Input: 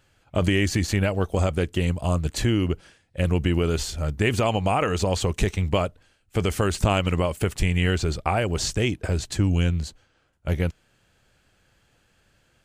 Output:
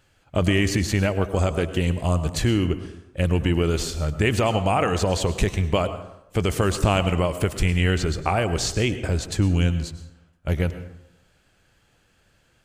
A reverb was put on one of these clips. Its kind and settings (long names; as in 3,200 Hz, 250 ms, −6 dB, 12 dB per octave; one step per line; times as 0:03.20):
dense smooth reverb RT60 0.82 s, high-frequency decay 0.55×, pre-delay 90 ms, DRR 11 dB
level +1 dB